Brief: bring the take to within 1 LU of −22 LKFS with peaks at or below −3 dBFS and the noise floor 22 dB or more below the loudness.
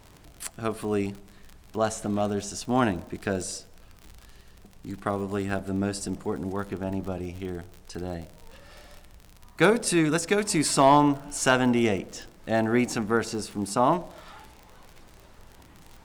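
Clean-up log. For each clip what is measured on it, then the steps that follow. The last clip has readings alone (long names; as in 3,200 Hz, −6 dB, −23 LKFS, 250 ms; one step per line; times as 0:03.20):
crackle rate 51 per second; integrated loudness −26.0 LKFS; sample peak −9.0 dBFS; target loudness −22.0 LKFS
→ click removal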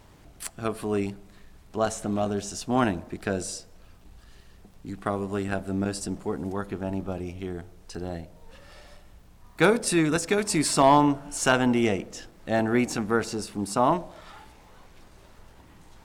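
crackle rate 0.37 per second; integrated loudness −26.0 LKFS; sample peak −8.0 dBFS; target loudness −22.0 LKFS
→ level +4 dB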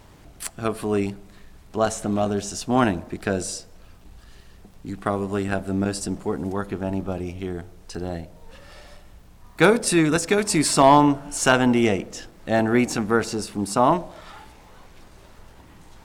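integrated loudness −22.0 LKFS; sample peak −4.0 dBFS; background noise floor −49 dBFS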